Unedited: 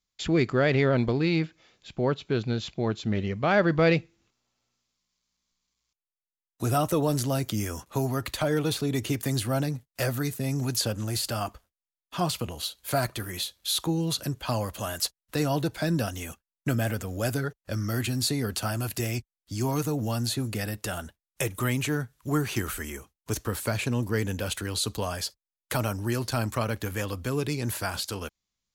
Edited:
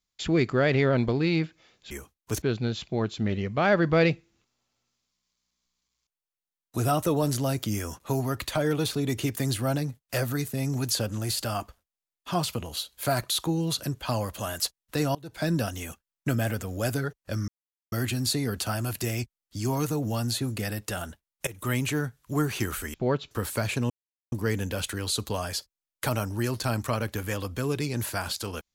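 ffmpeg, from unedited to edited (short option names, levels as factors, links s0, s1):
-filter_complex "[0:a]asplit=10[s0][s1][s2][s3][s4][s5][s6][s7][s8][s9];[s0]atrim=end=1.912[s10];[s1]atrim=start=22.898:end=23.412[s11];[s2]atrim=start=2.278:end=13.162[s12];[s3]atrim=start=13.698:end=15.55,asetpts=PTS-STARTPTS,afade=t=out:st=1.848:d=0.004:c=hsin:silence=0.0749894[s13];[s4]atrim=start=15.55:end=17.88,asetpts=PTS-STARTPTS,afade=t=in:d=0.28:c=qua:silence=0.0749894,afade=t=out:st=2.326:d=0.004:c=hsin,apad=pad_dur=0.44[s14];[s5]atrim=start=17.88:end=21.43,asetpts=PTS-STARTPTS,afade=t=in:d=0.004:c=hsin,afade=t=out:st=3.546:d=0.004:c=hsin:silence=0.125893[s15];[s6]atrim=start=21.43:end=22.902,asetpts=PTS-STARTPTS,afade=t=in:d=0.26:silence=0.125893[s16];[s7]atrim=start=1.908:end=2.282[s17];[s8]atrim=start=23.408:end=24,asetpts=PTS-STARTPTS,afade=t=out:st=0.588:d=0.004:c=hsin,apad=pad_dur=0.42[s18];[s9]atrim=start=24,asetpts=PTS-STARTPTS,afade=t=in:d=0.004:c=hsin[s19];[s10][s11]acrossfade=d=0.004:c1=hsin:c2=hsin[s20];[s20][s12]acrossfade=d=0.004:c1=hsin:c2=hsin[s21];[s13][s14][s15][s16]concat=n=4:v=0:a=1[s22];[s21][s22]acrossfade=d=0.004:c1=hsin:c2=hsin[s23];[s23][s17]acrossfade=d=0.004:c1=hsin:c2=hsin[s24];[s18][s19]concat=n=2:v=0:a=1[s25];[s24][s25]acrossfade=d=0.004:c1=hsin:c2=hsin"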